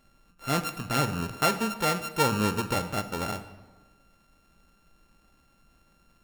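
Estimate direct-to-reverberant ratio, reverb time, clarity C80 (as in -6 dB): 10.0 dB, 1.3 s, 13.5 dB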